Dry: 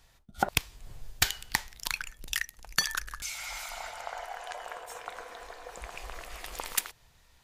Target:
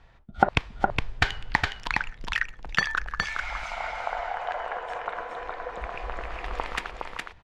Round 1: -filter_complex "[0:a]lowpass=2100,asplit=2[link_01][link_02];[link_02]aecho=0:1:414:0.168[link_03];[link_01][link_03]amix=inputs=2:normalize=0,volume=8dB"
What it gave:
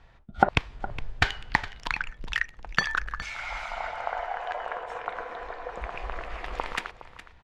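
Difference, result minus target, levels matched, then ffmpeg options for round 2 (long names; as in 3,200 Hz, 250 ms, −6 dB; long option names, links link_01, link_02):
echo-to-direct −11.5 dB
-filter_complex "[0:a]lowpass=2100,asplit=2[link_01][link_02];[link_02]aecho=0:1:414:0.631[link_03];[link_01][link_03]amix=inputs=2:normalize=0,volume=8dB"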